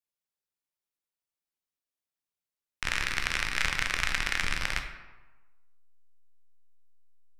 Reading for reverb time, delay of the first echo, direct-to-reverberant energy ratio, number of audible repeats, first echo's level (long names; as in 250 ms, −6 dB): 1.2 s, no echo audible, 4.0 dB, no echo audible, no echo audible